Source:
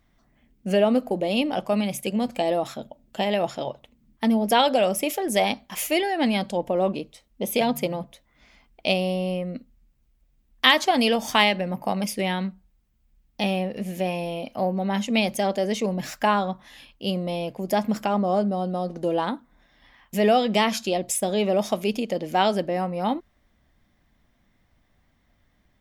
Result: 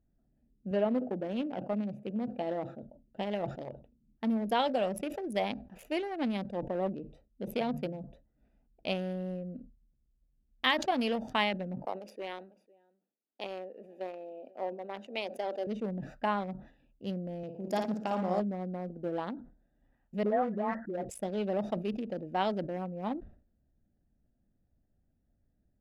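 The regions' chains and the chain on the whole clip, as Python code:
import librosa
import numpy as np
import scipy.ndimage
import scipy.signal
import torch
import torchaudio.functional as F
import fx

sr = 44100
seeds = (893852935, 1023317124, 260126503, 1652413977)

y = fx.chain(x, sr, fx.highpass(hz=100.0, slope=12),
    fx.high_shelf(hz=4300.0, db=-11.0),
    fx.echo_feedback(ms=72, feedback_pct=60, wet_db=-23), at=(0.71, 2.83))
y = fx.chain(y, sr, fx.highpass(hz=350.0, slope=24),
    fx.echo_single(ms=501, db=-22.5), at=(11.85, 15.67))
y = fx.chain(y, sr, fx.highpass(hz=100.0, slope=12),
    fx.peak_eq(hz=6700.0, db=8.5, octaves=1.6),
    fx.room_flutter(wall_m=9.6, rt60_s=0.67), at=(17.43, 18.4))
y = fx.chain(y, sr, fx.brickwall_lowpass(high_hz=2000.0),
    fx.low_shelf(hz=110.0, db=-7.5),
    fx.dispersion(late='highs', ms=117.0, hz=990.0), at=(20.23, 21.05))
y = fx.wiener(y, sr, points=41)
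y = fx.high_shelf(y, sr, hz=4400.0, db=-10.0)
y = fx.sustainer(y, sr, db_per_s=120.0)
y = y * 10.0 ** (-8.5 / 20.0)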